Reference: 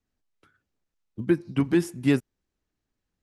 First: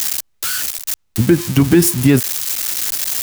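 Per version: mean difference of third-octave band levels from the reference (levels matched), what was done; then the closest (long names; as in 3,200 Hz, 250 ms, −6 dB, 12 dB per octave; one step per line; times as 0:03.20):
10.5 dB: spike at every zero crossing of −24 dBFS
parametric band 77 Hz +10.5 dB 1.1 octaves
in parallel at −1 dB: speech leveller within 4 dB 2 s
on the sum: boost into a limiter +10.5 dB
level −1 dB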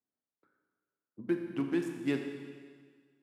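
5.5 dB: adaptive Wiener filter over 15 samples
high-pass filter 220 Hz 12 dB per octave
four-comb reverb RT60 1.7 s, combs from 29 ms, DRR 4 dB
level −8.5 dB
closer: second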